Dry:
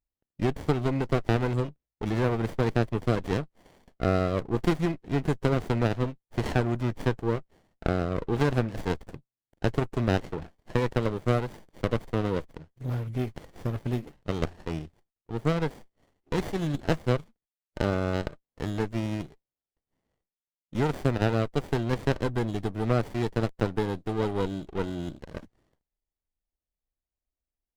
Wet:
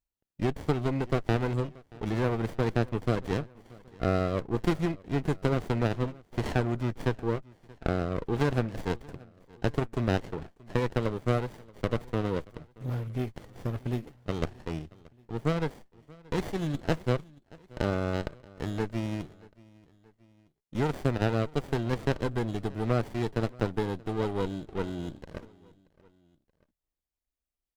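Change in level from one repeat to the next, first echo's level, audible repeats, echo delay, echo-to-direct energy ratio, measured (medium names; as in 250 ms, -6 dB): -5.0 dB, -23.5 dB, 2, 629 ms, -22.5 dB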